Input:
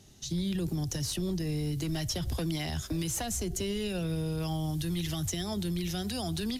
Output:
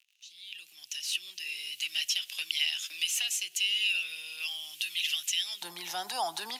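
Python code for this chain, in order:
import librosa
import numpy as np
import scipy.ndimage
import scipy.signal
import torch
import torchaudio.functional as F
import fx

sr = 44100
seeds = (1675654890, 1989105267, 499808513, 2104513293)

y = fx.fade_in_head(x, sr, length_s=1.6)
y = fx.dmg_crackle(y, sr, seeds[0], per_s=82.0, level_db=-55.0)
y = fx.highpass_res(y, sr, hz=fx.steps((0.0, 2700.0), (5.62, 880.0)), q=6.6)
y = y * librosa.db_to_amplitude(1.5)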